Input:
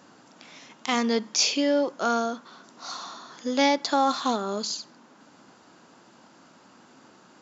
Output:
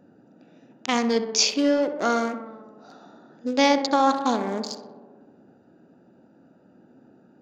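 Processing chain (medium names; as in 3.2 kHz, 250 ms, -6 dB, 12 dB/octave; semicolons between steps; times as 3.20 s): local Wiener filter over 41 samples; tape echo 64 ms, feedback 83%, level -9.5 dB, low-pass 2 kHz; trim +3 dB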